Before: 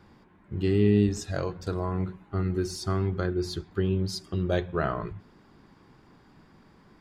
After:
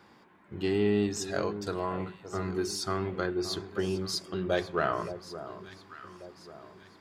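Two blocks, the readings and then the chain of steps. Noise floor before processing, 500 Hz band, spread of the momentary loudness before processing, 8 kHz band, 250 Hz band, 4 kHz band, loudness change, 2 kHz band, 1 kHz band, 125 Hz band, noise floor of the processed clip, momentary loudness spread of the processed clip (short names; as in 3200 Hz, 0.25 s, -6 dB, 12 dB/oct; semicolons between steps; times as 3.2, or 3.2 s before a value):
-58 dBFS, -1.0 dB, 10 LU, +3.0 dB, -4.5 dB, +2.5 dB, -3.5 dB, +1.5 dB, +1.5 dB, -10.0 dB, -59 dBFS, 19 LU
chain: in parallel at -8 dB: soft clip -23 dBFS, distortion -10 dB; on the sum: HPF 470 Hz 6 dB/oct; echo with dull and thin repeats by turns 0.57 s, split 1100 Hz, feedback 63%, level -11 dB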